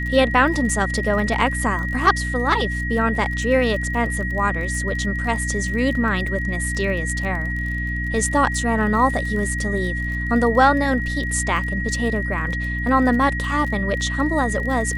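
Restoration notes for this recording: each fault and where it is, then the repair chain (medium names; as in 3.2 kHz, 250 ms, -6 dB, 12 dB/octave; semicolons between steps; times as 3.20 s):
crackle 28 per s -28 dBFS
hum 60 Hz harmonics 5 -26 dBFS
whine 1.9 kHz -26 dBFS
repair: de-click; band-stop 1.9 kHz, Q 30; de-hum 60 Hz, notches 5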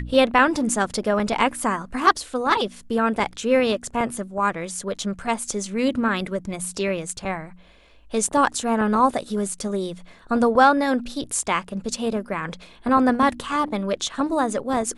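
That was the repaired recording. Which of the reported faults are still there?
nothing left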